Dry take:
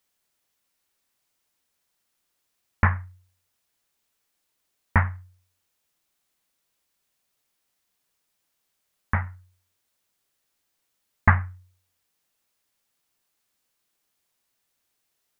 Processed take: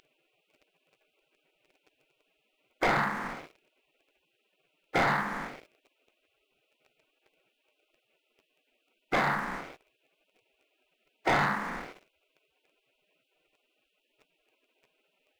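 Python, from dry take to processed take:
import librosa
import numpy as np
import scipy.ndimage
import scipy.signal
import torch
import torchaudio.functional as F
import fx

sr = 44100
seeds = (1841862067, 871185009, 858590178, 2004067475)

y = fx.bin_compress(x, sr, power=0.4)
y = fx.notch(y, sr, hz=640.0, q=12.0)
y = fx.spec_gate(y, sr, threshold_db=-20, keep='weak')
y = fx.high_shelf(y, sr, hz=2100.0, db=-11.5)
y = fx.leveller(y, sr, passes=3)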